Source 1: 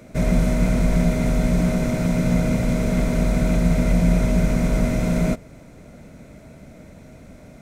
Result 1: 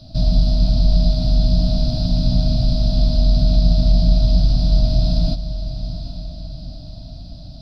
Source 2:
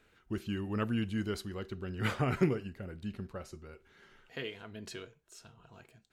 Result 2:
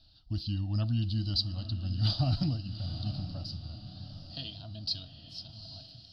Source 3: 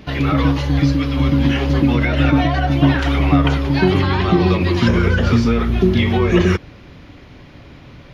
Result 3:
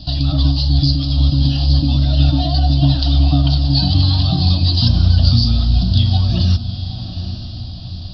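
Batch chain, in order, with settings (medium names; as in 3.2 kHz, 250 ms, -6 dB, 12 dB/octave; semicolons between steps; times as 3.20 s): FFT filter 110 Hz 0 dB, 210 Hz -10 dB, 320 Hz 0 dB, 460 Hz -25 dB, 660 Hz -6 dB, 970 Hz -21 dB, 1.6 kHz -21 dB, 4.8 kHz +15 dB, 6.9 kHz -30 dB, 9.9 kHz -25 dB; in parallel at -0.5 dB: compression, threshold -32 dBFS; on the sum: static phaser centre 910 Hz, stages 4; echo that smears into a reverb 839 ms, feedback 47%, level -11 dB; trim +5 dB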